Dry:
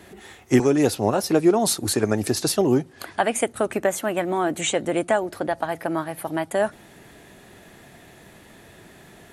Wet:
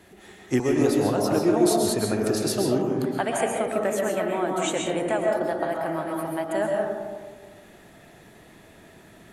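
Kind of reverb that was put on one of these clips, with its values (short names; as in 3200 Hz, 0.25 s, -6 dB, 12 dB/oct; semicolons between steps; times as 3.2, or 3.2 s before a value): digital reverb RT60 1.6 s, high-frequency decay 0.3×, pre-delay 90 ms, DRR -1 dB; gain -6 dB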